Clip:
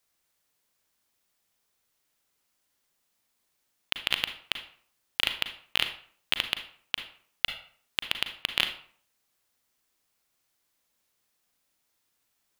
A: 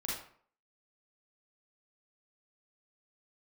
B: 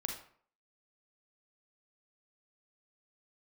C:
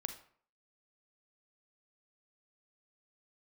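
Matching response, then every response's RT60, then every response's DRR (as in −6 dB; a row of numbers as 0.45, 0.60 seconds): C; 0.55, 0.55, 0.55 seconds; −5.5, 2.0, 7.5 decibels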